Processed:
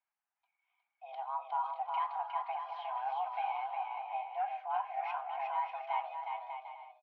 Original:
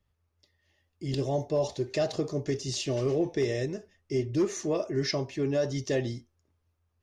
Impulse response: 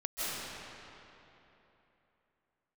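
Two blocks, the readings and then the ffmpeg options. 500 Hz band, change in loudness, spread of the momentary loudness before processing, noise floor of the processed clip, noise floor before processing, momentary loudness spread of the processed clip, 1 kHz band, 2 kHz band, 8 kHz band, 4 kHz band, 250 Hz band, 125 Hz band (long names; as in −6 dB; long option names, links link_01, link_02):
−18.0 dB, −7.5 dB, 6 LU, below −85 dBFS, −76 dBFS, 7 LU, +11.0 dB, −6.0 dB, below −40 dB, −16.5 dB, below −40 dB, below −40 dB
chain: -af "highpass=frequency=320:width_type=q:width=0.5412,highpass=frequency=320:width_type=q:width=1.307,lowpass=frequency=2500:width_type=q:width=0.5176,lowpass=frequency=2500:width_type=q:width=0.7071,lowpass=frequency=2500:width_type=q:width=1.932,afreqshift=390,aecho=1:1:360|594|746.1|845|909.2:0.631|0.398|0.251|0.158|0.1,volume=-7.5dB"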